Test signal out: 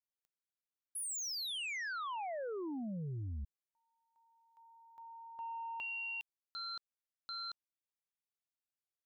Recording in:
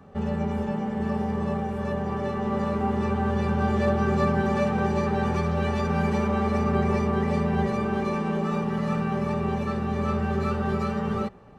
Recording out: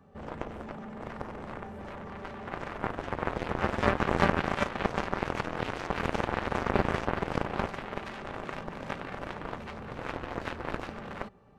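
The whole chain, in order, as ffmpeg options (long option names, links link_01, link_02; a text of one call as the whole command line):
ffmpeg -i in.wav -af "acontrast=30,aeval=exprs='0.447*(cos(1*acos(clip(val(0)/0.447,-1,1)))-cos(1*PI/2))+0.178*(cos(3*acos(clip(val(0)/0.447,-1,1)))-cos(3*PI/2))':channel_layout=same" out.wav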